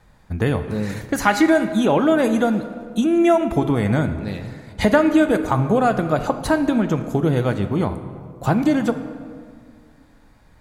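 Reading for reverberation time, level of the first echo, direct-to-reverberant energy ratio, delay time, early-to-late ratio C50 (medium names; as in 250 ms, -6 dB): 2.0 s, no echo, 8.5 dB, no echo, 10.5 dB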